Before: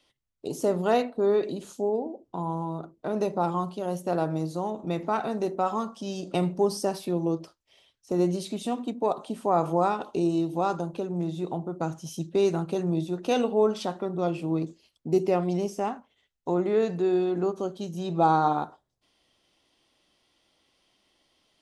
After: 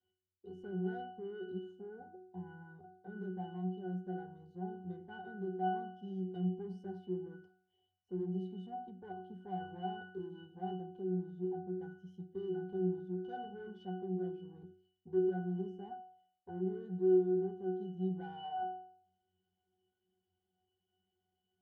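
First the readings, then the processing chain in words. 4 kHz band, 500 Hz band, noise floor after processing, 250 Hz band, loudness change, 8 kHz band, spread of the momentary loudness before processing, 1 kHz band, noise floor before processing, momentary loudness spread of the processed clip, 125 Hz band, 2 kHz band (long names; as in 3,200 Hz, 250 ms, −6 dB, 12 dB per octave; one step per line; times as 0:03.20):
−18.0 dB, −12.5 dB, below −85 dBFS, −10.5 dB, −12.0 dB, below −35 dB, 9 LU, −15.0 dB, −75 dBFS, 15 LU, −10.0 dB, −12.0 dB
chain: soft clipping −24.5 dBFS, distortion −9 dB
resonances in every octave F#, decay 0.6 s
level +6 dB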